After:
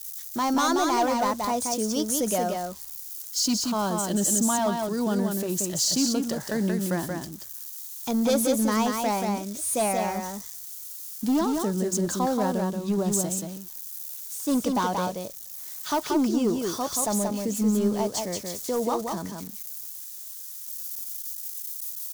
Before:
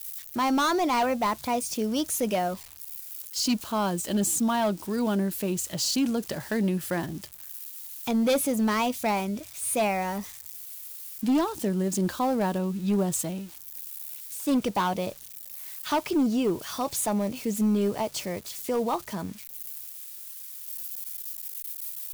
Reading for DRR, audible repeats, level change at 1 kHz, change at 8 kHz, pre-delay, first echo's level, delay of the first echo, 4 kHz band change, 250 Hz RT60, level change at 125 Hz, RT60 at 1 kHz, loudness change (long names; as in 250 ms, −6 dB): no reverb audible, 1, +1.0 dB, +4.5 dB, no reverb audible, −4.0 dB, 180 ms, +2.0 dB, no reverb audible, +0.5 dB, no reverb audible, +1.5 dB